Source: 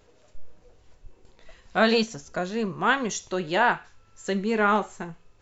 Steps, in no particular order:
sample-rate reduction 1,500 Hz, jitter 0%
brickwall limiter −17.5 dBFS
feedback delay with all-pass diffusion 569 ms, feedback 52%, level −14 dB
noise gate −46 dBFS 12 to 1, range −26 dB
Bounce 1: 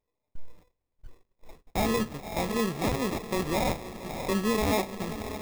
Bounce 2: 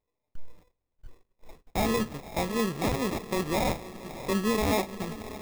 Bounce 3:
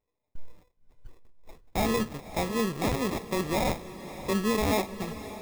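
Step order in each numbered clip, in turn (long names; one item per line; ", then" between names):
feedback delay with all-pass diffusion, then brickwall limiter, then sample-rate reduction, then noise gate
brickwall limiter, then feedback delay with all-pass diffusion, then noise gate, then sample-rate reduction
brickwall limiter, then sample-rate reduction, then noise gate, then feedback delay with all-pass diffusion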